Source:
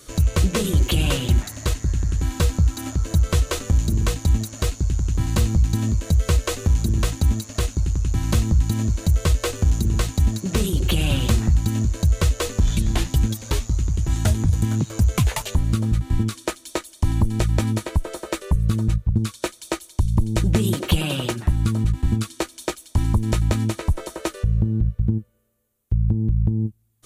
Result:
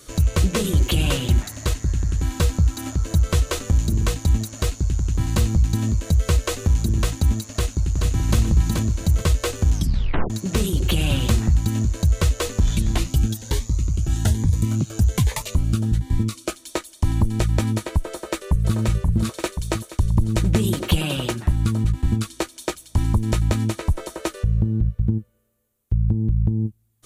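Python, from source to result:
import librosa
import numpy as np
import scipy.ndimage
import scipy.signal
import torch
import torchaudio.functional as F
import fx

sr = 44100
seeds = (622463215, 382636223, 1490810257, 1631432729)

y = fx.echo_throw(x, sr, start_s=7.52, length_s=0.84, ms=430, feedback_pct=30, wet_db=-3.5)
y = fx.notch_cascade(y, sr, direction='rising', hz=1.2, at=(12.98, 16.55))
y = fx.echo_throw(y, sr, start_s=18.11, length_s=0.65, ms=530, feedback_pct=55, wet_db=-3.0)
y = fx.edit(y, sr, fx.tape_stop(start_s=9.73, length_s=0.57), tone=tone)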